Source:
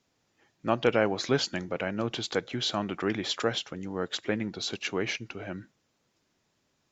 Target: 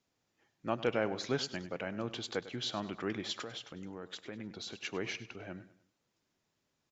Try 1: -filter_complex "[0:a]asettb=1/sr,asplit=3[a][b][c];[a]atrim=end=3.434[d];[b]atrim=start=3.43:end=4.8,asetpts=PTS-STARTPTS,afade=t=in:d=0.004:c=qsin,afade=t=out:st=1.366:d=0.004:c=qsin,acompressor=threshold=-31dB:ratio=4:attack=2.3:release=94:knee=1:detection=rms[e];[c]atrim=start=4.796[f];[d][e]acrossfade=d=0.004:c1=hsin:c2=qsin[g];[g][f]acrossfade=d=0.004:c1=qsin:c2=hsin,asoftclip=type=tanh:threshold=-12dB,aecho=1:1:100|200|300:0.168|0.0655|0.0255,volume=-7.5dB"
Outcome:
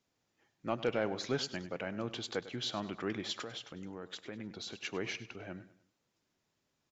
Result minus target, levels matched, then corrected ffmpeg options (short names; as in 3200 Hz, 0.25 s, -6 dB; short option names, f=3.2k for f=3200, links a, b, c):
soft clip: distortion +14 dB
-filter_complex "[0:a]asettb=1/sr,asplit=3[a][b][c];[a]atrim=end=3.434[d];[b]atrim=start=3.43:end=4.8,asetpts=PTS-STARTPTS,afade=t=in:d=0.004:c=qsin,afade=t=out:st=1.366:d=0.004:c=qsin,acompressor=threshold=-31dB:ratio=4:attack=2.3:release=94:knee=1:detection=rms[e];[c]atrim=start=4.796[f];[d][e]acrossfade=d=0.004:c1=hsin:c2=qsin[g];[g][f]acrossfade=d=0.004:c1=qsin:c2=hsin,asoftclip=type=tanh:threshold=-3.5dB,aecho=1:1:100|200|300:0.168|0.0655|0.0255,volume=-7.5dB"